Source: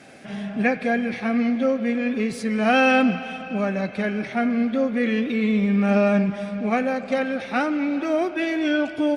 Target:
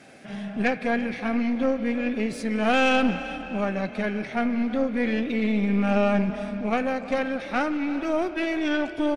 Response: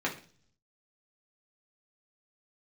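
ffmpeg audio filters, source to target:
-filter_complex "[0:a]aeval=exprs='(tanh(5.01*val(0)+0.6)-tanh(0.6))/5.01':c=same,asplit=4[a][b][c][d];[b]adelay=336,afreqshift=35,volume=-17dB[e];[c]adelay=672,afreqshift=70,volume=-26.9dB[f];[d]adelay=1008,afreqshift=105,volume=-36.8dB[g];[a][e][f][g]amix=inputs=4:normalize=0"

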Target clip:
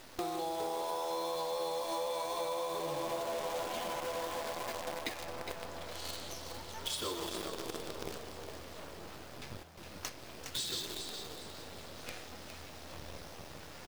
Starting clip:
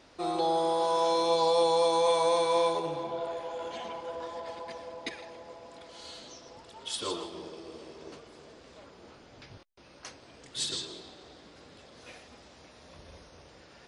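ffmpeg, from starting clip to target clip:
-filter_complex "[0:a]alimiter=limit=-23dB:level=0:latency=1:release=133,flanger=delay=7.7:depth=1.8:regen=-74:speed=0.72:shape=triangular,acrusher=bits=8:dc=4:mix=0:aa=0.000001,acompressor=threshold=-47dB:ratio=6,asplit=5[a][b][c][d][e];[b]adelay=411,afreqshift=81,volume=-7.5dB[f];[c]adelay=822,afreqshift=162,volume=-16.9dB[g];[d]adelay=1233,afreqshift=243,volume=-26.2dB[h];[e]adelay=1644,afreqshift=324,volume=-35.6dB[i];[a][f][g][h][i]amix=inputs=5:normalize=0,volume=11.5dB"

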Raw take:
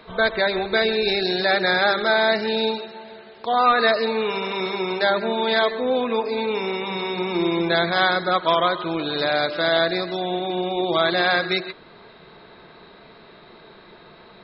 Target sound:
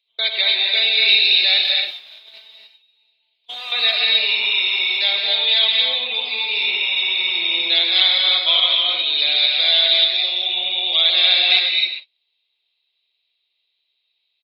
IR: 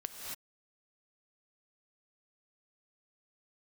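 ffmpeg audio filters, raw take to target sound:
-filter_complex "[0:a]highpass=f=180:p=1,aecho=1:1:95|190|285:0.211|0.0486|0.0112,aexciter=amount=12.2:drive=6.3:freq=2.4k,asettb=1/sr,asplit=3[a][b][c];[a]atrim=end=1.624[d];[b]atrim=start=1.62:end=3.72,asetpts=PTS-STARTPTS,afade=t=in:d=0.004:c=qsin,afade=t=out:st=2.096:d=0.004:c=qsin,asoftclip=type=hard:threshold=-19dB[e];[c]atrim=start=3.716[f];[d][e]acrossfade=d=0.004:c1=hsin:c2=qsin[g];[g][f]acrossfade=d=0.004:c1=qsin:c2=hsin,acrossover=split=2800[h][i];[i]acompressor=threshold=-43dB:ratio=4:attack=1:release=60[j];[h][j]amix=inputs=2:normalize=0,acrossover=split=450 3300:gain=0.126 1 0.158[k][l][m];[k][l][m]amix=inputs=3:normalize=0,agate=range=-34dB:threshold=-29dB:ratio=16:detection=peak,highshelf=f=2.2k:t=q:w=1.5:g=14[n];[1:a]atrim=start_sample=2205[o];[n][o]afir=irnorm=-1:irlink=0,volume=-8dB"

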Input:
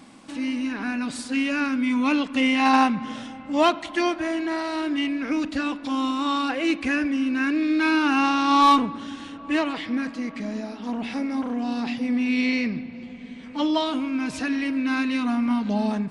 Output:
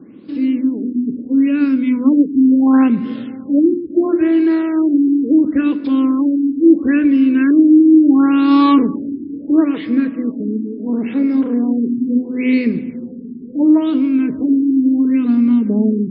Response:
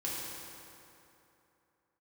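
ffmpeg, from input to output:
-filter_complex "[0:a]highpass=96,bandreject=f=50:t=h:w=6,bandreject=f=100:t=h:w=6,bandreject=f=150:t=h:w=6,bandreject=f=200:t=h:w=6,bandreject=f=250:t=h:w=6,bandreject=f=300:t=h:w=6,bandreject=f=350:t=h:w=6,bandreject=f=400:t=h:w=6,acrossover=split=600|2900[a][b][c];[b]dynaudnorm=f=260:g=21:m=7dB[d];[a][d][c]amix=inputs=3:normalize=0,lowshelf=f=550:t=q:w=3:g=11.5,afftfilt=real='re*lt(b*sr/1024,420*pow(5400/420,0.5+0.5*sin(2*PI*0.73*pts/sr)))':imag='im*lt(b*sr/1024,420*pow(5400/420,0.5+0.5*sin(2*PI*0.73*pts/sr)))':win_size=1024:overlap=0.75,volume=-3dB"

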